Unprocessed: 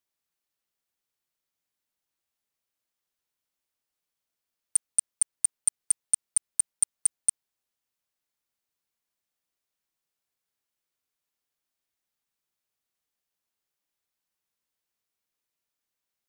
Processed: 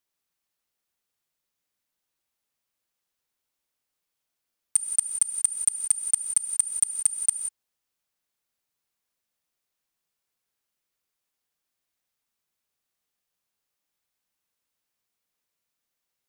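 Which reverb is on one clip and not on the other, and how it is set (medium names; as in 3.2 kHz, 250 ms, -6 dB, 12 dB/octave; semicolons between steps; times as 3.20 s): gated-style reverb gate 200 ms rising, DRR 6 dB; trim +2 dB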